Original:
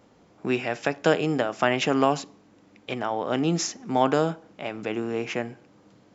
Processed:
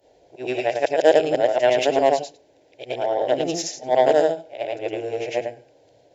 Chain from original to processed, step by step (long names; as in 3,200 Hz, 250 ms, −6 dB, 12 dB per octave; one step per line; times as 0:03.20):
every overlapping window played backwards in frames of 229 ms
graphic EQ with 15 bands 630 Hz +10 dB, 1,600 Hz +3 dB, 4,000 Hz +3 dB
in parallel at −1 dB: brickwall limiter −12.5 dBFS, peak gain reduction 8 dB
on the sum: phaser with its sweep stopped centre 500 Hz, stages 4
harmonic generator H 3 −18 dB, 7 −42 dB, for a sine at −5 dBFS
level +3 dB